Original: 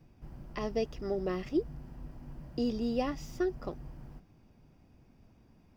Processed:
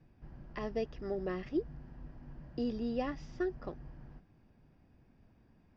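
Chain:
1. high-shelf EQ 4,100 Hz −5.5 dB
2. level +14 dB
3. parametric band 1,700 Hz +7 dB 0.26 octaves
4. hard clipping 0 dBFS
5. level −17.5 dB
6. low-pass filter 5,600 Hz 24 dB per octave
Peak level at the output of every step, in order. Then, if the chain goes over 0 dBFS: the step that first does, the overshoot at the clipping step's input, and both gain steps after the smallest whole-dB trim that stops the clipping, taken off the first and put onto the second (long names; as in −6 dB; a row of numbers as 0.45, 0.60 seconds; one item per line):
−19.0, −5.0, −5.0, −5.0, −22.5, −22.5 dBFS
no step passes full scale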